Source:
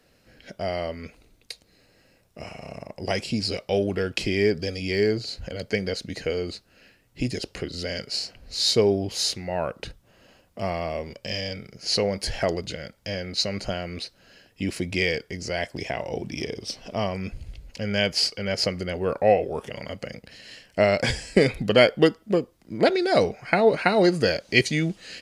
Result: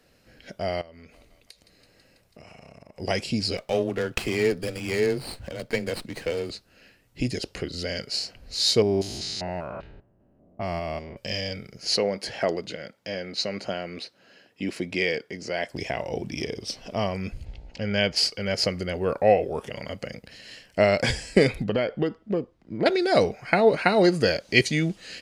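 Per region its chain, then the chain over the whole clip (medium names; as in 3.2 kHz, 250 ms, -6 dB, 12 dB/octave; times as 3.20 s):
0.81–2.99 s: thinning echo 164 ms, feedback 80%, high-pass 520 Hz, level -23 dB + compression 10:1, threshold -43 dBFS
3.57–6.50 s: bass shelf 240 Hz -5 dB + frequency shift +17 Hz + sliding maximum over 5 samples
8.82–11.17 s: spectrogram pixelated in time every 200 ms + level-controlled noise filter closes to 390 Hz, open at -24.5 dBFS + band-stop 500 Hz, Q 5.1
11.96–15.69 s: high-pass 190 Hz + treble shelf 5.8 kHz -10 dB
17.44–18.15 s: low-pass 4.8 kHz + mains buzz 60 Hz, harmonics 15, -57 dBFS -2 dB/octave
21.64–22.86 s: compression 4:1, threshold -19 dBFS + tape spacing loss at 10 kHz 21 dB
whole clip: none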